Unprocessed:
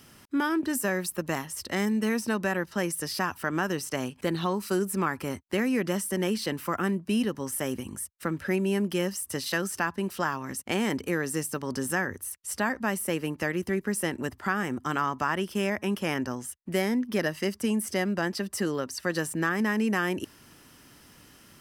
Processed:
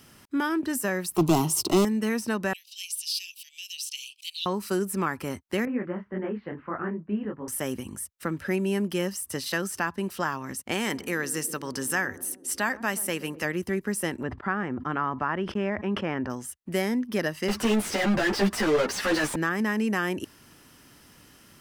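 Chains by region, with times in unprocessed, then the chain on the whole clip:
1.16–1.85 s: peaking EQ 290 Hz +8 dB 2.4 oct + waveshaping leveller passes 3 + static phaser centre 350 Hz, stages 8
2.53–4.46 s: steep high-pass 2.5 kHz 72 dB/octave + peaking EQ 3.7 kHz +8 dB 1.2 oct
5.65–7.48 s: inverse Chebyshev low-pass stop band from 7.8 kHz, stop band 70 dB + detune thickener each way 58 cents
10.74–13.45 s: tilt shelf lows -4 dB, about 840 Hz + band-passed feedback delay 125 ms, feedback 80%, band-pass 310 Hz, level -14.5 dB
14.23–16.30 s: low-pass 2 kHz + gate -48 dBFS, range -21 dB + decay stretcher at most 110 dB/s
17.48–19.36 s: overdrive pedal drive 38 dB, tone 2.2 kHz, clips at -14 dBFS + three-phase chorus
whole clip: none

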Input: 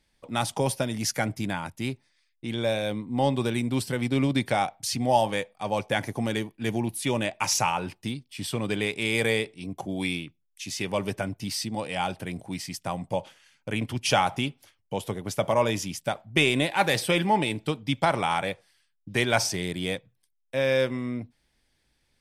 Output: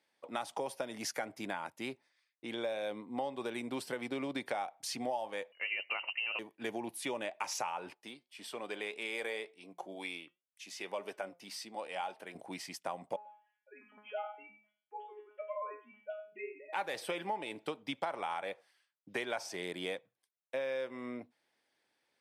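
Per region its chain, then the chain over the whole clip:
5.52–6.39 s: bass shelf 170 Hz +10.5 dB + frequency inversion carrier 2.9 kHz
7.94–12.35 s: high-pass 320 Hz 6 dB/octave + flange 1.9 Hz, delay 4.4 ms, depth 1.4 ms, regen +86%
13.16–16.73 s: formants replaced by sine waves + feedback comb 210 Hz, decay 0.39 s, mix 100% + delay 94 ms -12.5 dB
whole clip: high-pass 450 Hz 12 dB/octave; treble shelf 2.4 kHz -10.5 dB; compression 6:1, threshold -34 dBFS

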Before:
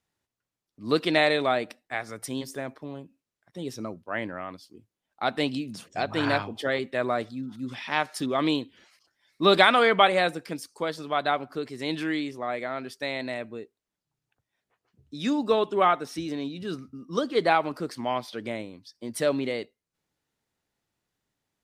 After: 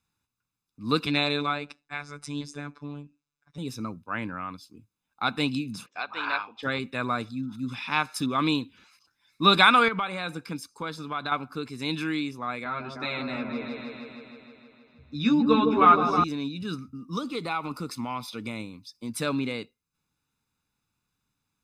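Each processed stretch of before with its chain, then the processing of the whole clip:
1.06–3.58 s: low-pass 8 kHz 24 dB/octave + robot voice 145 Hz
5.86–6.63 s: high-pass 700 Hz + distance through air 180 m
9.88–11.32 s: treble shelf 5.9 kHz -5 dB + band-stop 2.6 kHz, Q 22 + compression 4:1, threshold -26 dBFS
12.64–16.24 s: distance through air 140 m + doubling 13 ms -2 dB + delay with an opening low-pass 157 ms, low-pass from 750 Hz, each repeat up 1 oct, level -3 dB
17.08–19.10 s: compression 2.5:1, threshold -27 dBFS + Butterworth band-stop 1.6 kHz, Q 6.6 + treble shelf 6.4 kHz +4.5 dB
whole clip: peaking EQ 370 Hz -8 dB 0.32 oct; comb 0.8 ms, depth 68%

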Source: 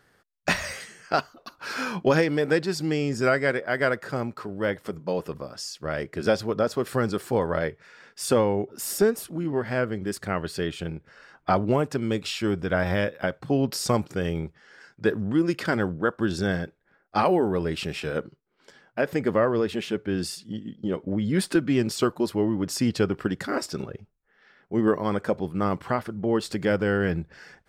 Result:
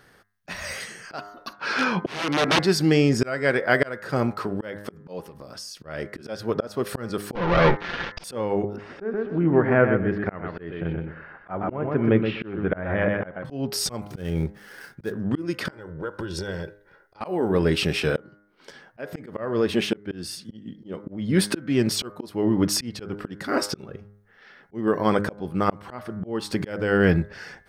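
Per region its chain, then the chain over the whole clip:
1.53–2.59 s: integer overflow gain 19 dB + band-pass 130–4400 Hz
5.23–5.77 s: treble shelf 5.6 kHz +8 dB + compression 4:1, threshold -44 dBFS + loudspeaker Doppler distortion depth 0.18 ms
7.35–8.24 s: comb filter that takes the minimum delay 5.8 ms + waveshaping leveller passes 5 + Gaussian low-pass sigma 2.2 samples
8.76–13.45 s: low-pass 2.2 kHz 24 dB/octave + feedback delay 125 ms, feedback 21%, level -7 dB
14.04–15.12 s: dead-time distortion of 0.077 ms + bass shelf 230 Hz +5.5 dB
15.70–17.21 s: compression 16:1, threshold -33 dBFS + comb 2.1 ms, depth 61%
whole clip: band-stop 7.3 kHz, Q 7; de-hum 102.3 Hz, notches 21; slow attack 444 ms; trim +7.5 dB

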